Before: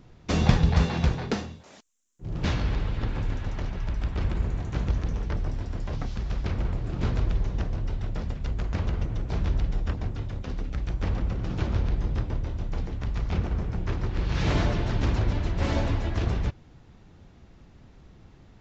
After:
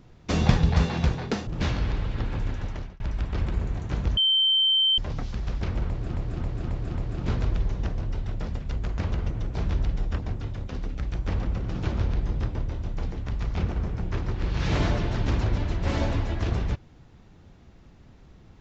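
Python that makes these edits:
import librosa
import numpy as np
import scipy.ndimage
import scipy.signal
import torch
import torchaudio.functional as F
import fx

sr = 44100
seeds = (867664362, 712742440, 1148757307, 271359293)

y = fx.edit(x, sr, fx.cut(start_s=1.47, length_s=0.83),
    fx.fade_out_span(start_s=3.4, length_s=0.43, curve='qsin'),
    fx.bleep(start_s=5.0, length_s=0.81, hz=3110.0, db=-18.0),
    fx.repeat(start_s=6.7, length_s=0.27, count=5), tone=tone)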